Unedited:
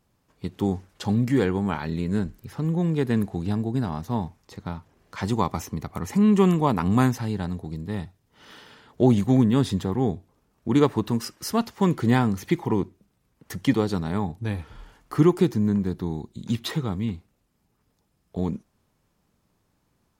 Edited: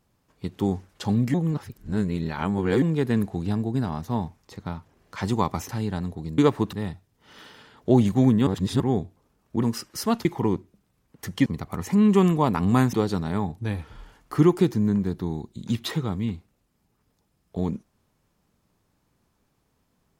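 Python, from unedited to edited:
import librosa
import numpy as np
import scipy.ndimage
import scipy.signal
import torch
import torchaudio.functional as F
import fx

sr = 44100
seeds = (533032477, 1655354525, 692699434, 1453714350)

y = fx.edit(x, sr, fx.reverse_span(start_s=1.34, length_s=1.48),
    fx.move(start_s=5.69, length_s=1.47, to_s=13.73),
    fx.reverse_span(start_s=9.59, length_s=0.33),
    fx.move(start_s=10.75, length_s=0.35, to_s=7.85),
    fx.cut(start_s=11.72, length_s=0.8), tone=tone)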